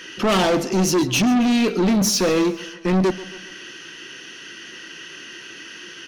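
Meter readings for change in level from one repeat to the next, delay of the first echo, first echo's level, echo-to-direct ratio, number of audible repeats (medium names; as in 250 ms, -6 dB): -6.0 dB, 135 ms, -17.5 dB, -16.0 dB, 3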